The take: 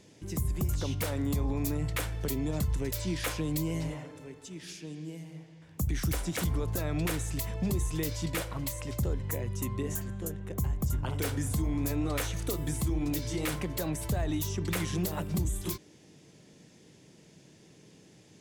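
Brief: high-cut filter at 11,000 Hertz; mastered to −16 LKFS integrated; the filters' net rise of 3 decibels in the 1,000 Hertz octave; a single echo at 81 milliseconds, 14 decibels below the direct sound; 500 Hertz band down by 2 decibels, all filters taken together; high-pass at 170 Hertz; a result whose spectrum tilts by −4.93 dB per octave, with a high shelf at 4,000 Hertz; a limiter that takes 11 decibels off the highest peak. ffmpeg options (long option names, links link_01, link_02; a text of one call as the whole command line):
ffmpeg -i in.wav -af "highpass=170,lowpass=11000,equalizer=frequency=500:width_type=o:gain=-3.5,equalizer=frequency=1000:width_type=o:gain=5,highshelf=frequency=4000:gain=-4,alimiter=level_in=7dB:limit=-24dB:level=0:latency=1,volume=-7dB,aecho=1:1:81:0.2,volume=24dB" out.wav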